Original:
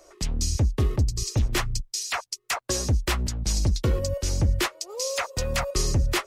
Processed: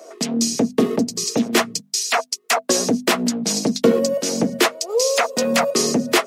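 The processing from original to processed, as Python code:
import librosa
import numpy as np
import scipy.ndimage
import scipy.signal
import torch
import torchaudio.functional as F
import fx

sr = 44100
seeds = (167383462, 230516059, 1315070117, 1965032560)

y = scipy.signal.sosfilt(scipy.signal.butter(6, 180.0, 'highpass', fs=sr, output='sos'), x)
y = fx.hum_notches(y, sr, base_hz=50, count=5)
y = fx.small_body(y, sr, hz=(240.0, 460.0, 660.0), ring_ms=70, db=13)
y = F.gain(torch.from_numpy(y), 8.0).numpy()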